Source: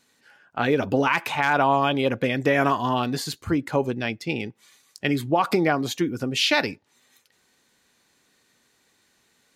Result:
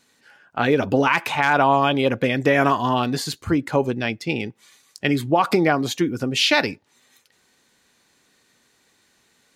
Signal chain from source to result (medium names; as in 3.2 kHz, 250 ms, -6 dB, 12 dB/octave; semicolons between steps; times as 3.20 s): peaking EQ 13 kHz -3 dB 0.29 oct; trim +3 dB